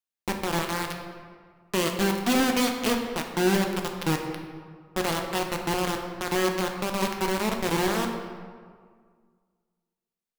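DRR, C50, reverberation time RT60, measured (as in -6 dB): 2.5 dB, 5.5 dB, 1.8 s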